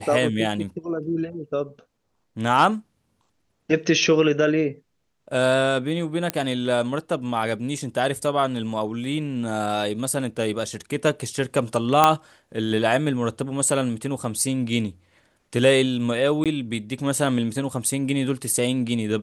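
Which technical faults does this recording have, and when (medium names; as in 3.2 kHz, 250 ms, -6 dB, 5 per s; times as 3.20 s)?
6.30 s: pop -7 dBFS
12.04 s: pop -2 dBFS
16.44–16.46 s: dropout 17 ms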